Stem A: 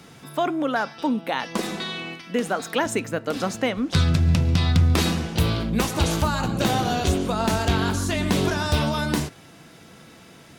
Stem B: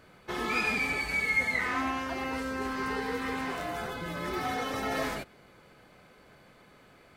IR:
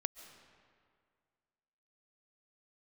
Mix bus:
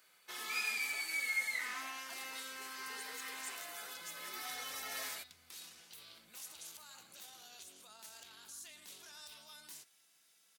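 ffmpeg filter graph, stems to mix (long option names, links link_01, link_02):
-filter_complex "[0:a]alimiter=limit=-20dB:level=0:latency=1:release=14,adelay=550,volume=-13dB[link_01];[1:a]volume=2dB[link_02];[link_01][link_02]amix=inputs=2:normalize=0,aderivative"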